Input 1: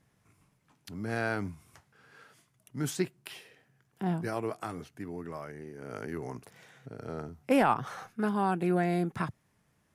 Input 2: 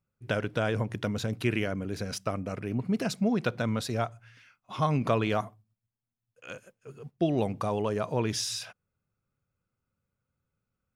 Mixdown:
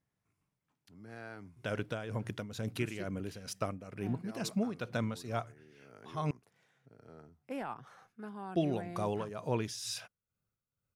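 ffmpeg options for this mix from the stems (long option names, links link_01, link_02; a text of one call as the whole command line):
ffmpeg -i stem1.wav -i stem2.wav -filter_complex "[0:a]volume=-15.5dB[link_01];[1:a]highshelf=frequency=8400:gain=11,tremolo=f=2.2:d=0.7,adelay=1350,volume=-4dB,asplit=3[link_02][link_03][link_04];[link_02]atrim=end=6.31,asetpts=PTS-STARTPTS,afade=type=out:start_time=6.306:duration=0.004:curve=hsin[link_05];[link_03]atrim=start=6.31:end=8.47,asetpts=PTS-STARTPTS,volume=0[link_06];[link_04]atrim=start=8.47,asetpts=PTS-STARTPTS,afade=type=in:duration=0.004:curve=hsin[link_07];[link_05][link_06][link_07]concat=n=3:v=0:a=1[link_08];[link_01][link_08]amix=inputs=2:normalize=0,highshelf=frequency=12000:gain=-7" out.wav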